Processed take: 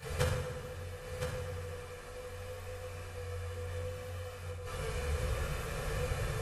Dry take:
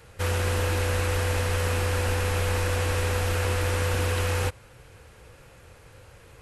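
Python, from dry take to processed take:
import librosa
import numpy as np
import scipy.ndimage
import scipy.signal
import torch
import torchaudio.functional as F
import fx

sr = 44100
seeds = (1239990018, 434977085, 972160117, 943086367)

p1 = x + 0.48 * np.pad(x, (int(1.7 * sr / 1000.0), 0))[:len(x)]
p2 = fx.chorus_voices(p1, sr, voices=2, hz=0.67, base_ms=24, depth_ms=4.8, mix_pct=70)
p3 = fx.gate_flip(p2, sr, shuts_db=-26.0, range_db=-32)
p4 = p3 + fx.echo_single(p3, sr, ms=1015, db=-7.0, dry=0)
p5 = fx.rev_fdn(p4, sr, rt60_s=1.6, lf_ratio=1.05, hf_ratio=0.65, size_ms=40.0, drr_db=-5.0)
y = p5 * librosa.db_to_amplitude(7.5)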